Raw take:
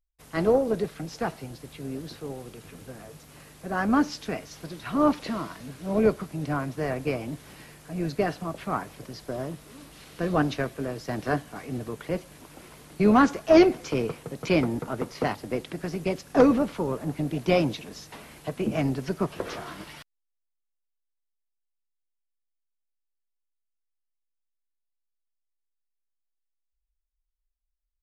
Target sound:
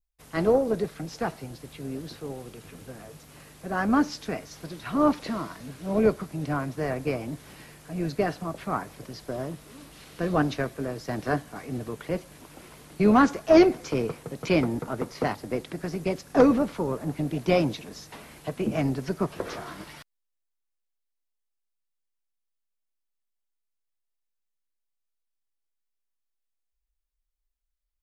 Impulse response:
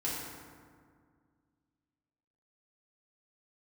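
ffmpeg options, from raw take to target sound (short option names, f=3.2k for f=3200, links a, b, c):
-af "adynamicequalizer=threshold=0.002:dfrequency=2900:dqfactor=2.7:tfrequency=2900:tqfactor=2.7:attack=5:release=100:ratio=0.375:range=2:mode=cutabove:tftype=bell"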